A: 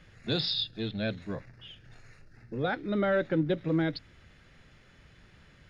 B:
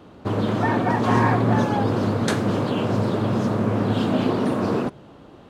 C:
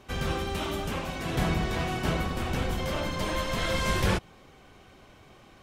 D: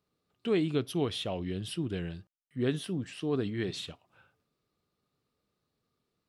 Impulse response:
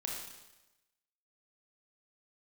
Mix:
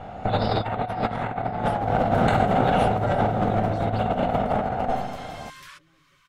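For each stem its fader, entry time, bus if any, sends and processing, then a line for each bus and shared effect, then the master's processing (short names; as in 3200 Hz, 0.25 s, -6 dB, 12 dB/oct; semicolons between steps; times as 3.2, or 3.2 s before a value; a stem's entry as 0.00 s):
-6.5 dB, 0.00 s, no send, echo send -12 dB, comb 7.2 ms, depth 92%
+2.0 dB, 0.00 s, send -6 dB, no echo send, minimum comb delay 1.4 ms; running mean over 8 samples; bell 740 Hz +10 dB 0.29 oct; auto duck -6 dB, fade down 1.05 s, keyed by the fourth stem
-6.5 dB, 1.60 s, no send, no echo send, Chebyshev high-pass 990 Hz, order 8; compressor 2:1, threshold -48 dBFS, peak gain reduction 11 dB
-7.5 dB, 0.00 s, no send, no echo send, transient shaper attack +8 dB, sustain +4 dB; requantised 10-bit, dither none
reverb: on, RT60 1.0 s, pre-delay 25 ms
echo: feedback echo 0.522 s, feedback 39%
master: negative-ratio compressor -22 dBFS, ratio -0.5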